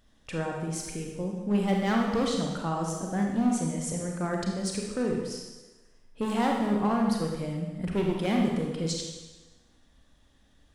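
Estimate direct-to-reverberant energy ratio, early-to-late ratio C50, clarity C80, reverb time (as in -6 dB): 0.0 dB, 2.0 dB, 4.5 dB, 1.2 s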